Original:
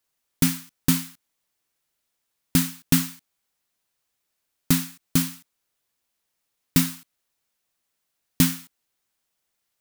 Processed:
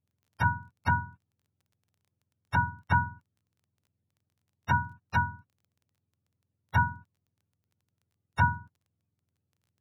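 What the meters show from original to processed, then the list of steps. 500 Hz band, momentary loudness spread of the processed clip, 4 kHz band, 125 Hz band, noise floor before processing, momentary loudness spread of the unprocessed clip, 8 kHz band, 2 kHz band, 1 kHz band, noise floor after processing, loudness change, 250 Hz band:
-6.0 dB, 12 LU, -19.0 dB, -3.0 dB, -79 dBFS, 10 LU, under -30 dB, +6.5 dB, +14.5 dB, -84 dBFS, -6.0 dB, -15.5 dB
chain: spectrum mirrored in octaves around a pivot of 500 Hz; treble ducked by the level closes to 1400 Hz, closed at -25 dBFS; crackle 16/s -54 dBFS

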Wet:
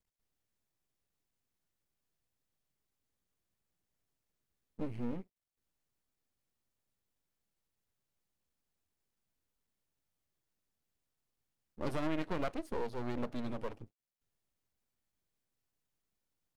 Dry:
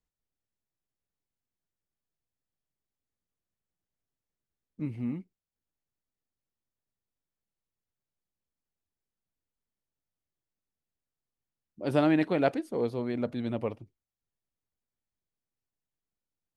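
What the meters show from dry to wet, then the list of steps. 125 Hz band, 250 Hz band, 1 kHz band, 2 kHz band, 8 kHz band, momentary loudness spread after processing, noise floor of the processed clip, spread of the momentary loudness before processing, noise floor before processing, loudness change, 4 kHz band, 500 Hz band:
-8.5 dB, -10.0 dB, -7.0 dB, -8.5 dB, n/a, 17 LU, under -85 dBFS, 13 LU, under -85 dBFS, -9.5 dB, -6.5 dB, -10.0 dB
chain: compressor 4:1, threshold -34 dBFS, peak gain reduction 12 dB; half-wave rectifier; gain +4.5 dB

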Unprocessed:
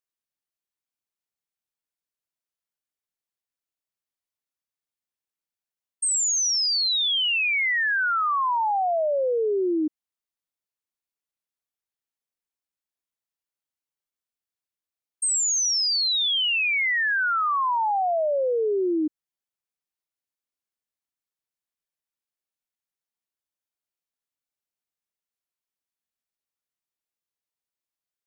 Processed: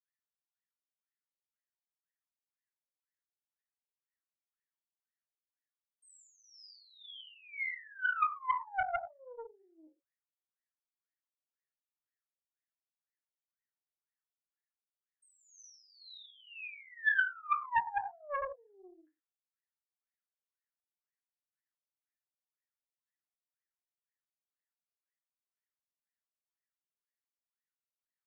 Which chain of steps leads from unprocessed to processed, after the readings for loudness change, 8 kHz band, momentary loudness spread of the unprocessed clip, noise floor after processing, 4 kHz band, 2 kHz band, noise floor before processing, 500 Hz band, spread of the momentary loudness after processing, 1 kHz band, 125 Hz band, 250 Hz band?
-13.0 dB, -38.5 dB, 4 LU, under -85 dBFS, -30.5 dB, -11.0 dB, under -85 dBFS, -22.5 dB, 20 LU, -11.5 dB, n/a, under -35 dB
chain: graphic EQ 250/500/2000 Hz -10/-3/+11 dB; limiter -19 dBFS, peak gain reduction 9.5 dB; wah 2 Hz 540–1900 Hz, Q 22; non-linear reverb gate 0.14 s falling, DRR 1.5 dB; Doppler distortion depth 0.53 ms

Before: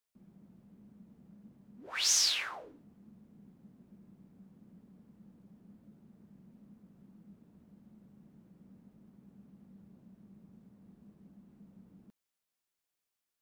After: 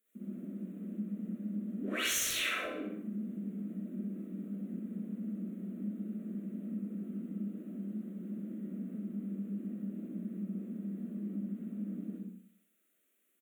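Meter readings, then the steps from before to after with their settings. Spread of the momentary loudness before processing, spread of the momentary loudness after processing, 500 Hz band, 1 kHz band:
17 LU, 9 LU, +11.5 dB, +2.0 dB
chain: brick-wall FIR high-pass 180 Hz; tilt shelf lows +9 dB, about 830 Hz; digital reverb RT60 0.64 s, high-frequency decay 0.7×, pre-delay 15 ms, DRR -7 dB; one-sided clip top -27.5 dBFS; feedback echo 64 ms, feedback 48%, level -8 dB; compressor 2.5:1, threshold -40 dBFS, peak gain reduction 9 dB; high shelf 3400 Hz +9 dB; fixed phaser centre 2100 Hz, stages 4; gain +7.5 dB

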